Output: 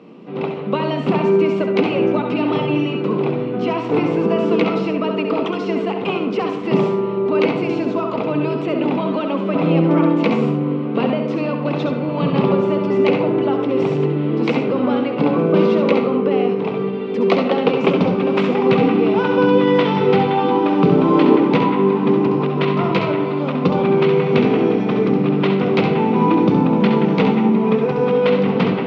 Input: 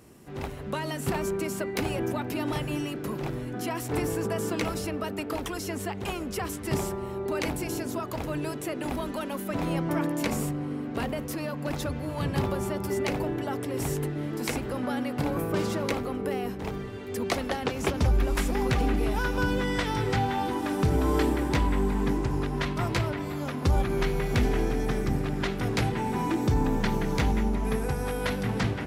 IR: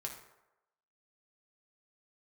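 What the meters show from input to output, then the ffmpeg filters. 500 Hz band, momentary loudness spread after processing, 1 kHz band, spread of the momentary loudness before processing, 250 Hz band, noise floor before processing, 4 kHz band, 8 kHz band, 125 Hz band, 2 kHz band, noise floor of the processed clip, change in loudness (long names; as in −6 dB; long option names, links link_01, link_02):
+14.5 dB, 6 LU, +11.0 dB, 7 LU, +13.5 dB, −35 dBFS, +7.0 dB, below −10 dB, +7.0 dB, +7.0 dB, −23 dBFS, +12.0 dB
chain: -filter_complex "[0:a]highpass=frequency=170:width=0.5412,highpass=frequency=170:width=1.3066,equalizer=frequency=180:width_type=q:width=4:gain=10,equalizer=frequency=270:width_type=q:width=4:gain=5,equalizer=frequency=480:width_type=q:width=4:gain=8,equalizer=frequency=1100:width_type=q:width=4:gain=4,equalizer=frequency=1700:width_type=q:width=4:gain=-10,equalizer=frequency=2600:width_type=q:width=4:gain=4,lowpass=frequency=3600:width=0.5412,lowpass=frequency=3600:width=1.3066,asplit=2[link_01][link_02];[1:a]atrim=start_sample=2205,adelay=67[link_03];[link_02][link_03]afir=irnorm=-1:irlink=0,volume=-3dB[link_04];[link_01][link_04]amix=inputs=2:normalize=0,volume=8dB"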